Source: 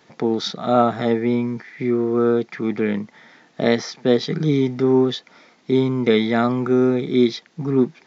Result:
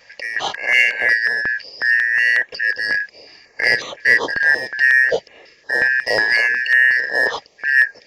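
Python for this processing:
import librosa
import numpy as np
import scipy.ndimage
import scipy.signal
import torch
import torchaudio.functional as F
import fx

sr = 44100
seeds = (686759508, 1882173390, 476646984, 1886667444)

p1 = fx.band_shuffle(x, sr, order='3142')
p2 = fx.peak_eq(p1, sr, hz=480.0, db=14.5, octaves=0.92)
p3 = 10.0 ** (-18.0 / 20.0) * np.tanh(p2 / 10.0 ** (-18.0 / 20.0))
p4 = p2 + (p3 * librosa.db_to_amplitude(-7.5))
p5 = fx.filter_held_notch(p4, sr, hz=5.5, low_hz=360.0, high_hz=4900.0)
y = p5 * librosa.db_to_amplitude(1.5)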